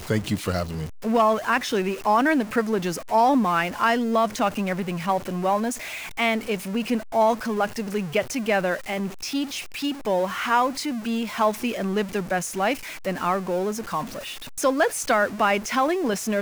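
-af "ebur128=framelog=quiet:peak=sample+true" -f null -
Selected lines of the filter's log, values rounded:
Integrated loudness:
  I:         -24.1 LUFS
  Threshold: -34.1 LUFS
Loudness range:
  LRA:         3.7 LU
  Threshold: -44.2 LUFS
  LRA low:   -25.8 LUFS
  LRA high:  -22.1 LUFS
Sample peak:
  Peak:       -9.1 dBFS
True peak:
  Peak:       -9.0 dBFS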